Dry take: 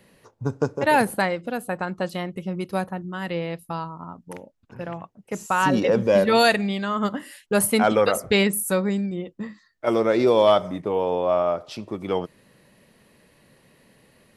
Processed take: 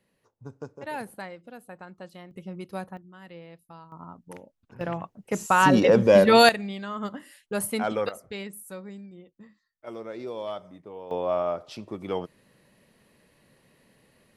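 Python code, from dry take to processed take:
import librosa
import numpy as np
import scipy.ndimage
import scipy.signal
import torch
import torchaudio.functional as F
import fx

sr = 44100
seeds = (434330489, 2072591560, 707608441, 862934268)

y = fx.gain(x, sr, db=fx.steps((0.0, -16.0), (2.31, -9.0), (2.97, -17.0), (3.92, -5.5), (4.81, 2.0), (6.49, -8.5), (8.09, -17.5), (11.11, -5.0)))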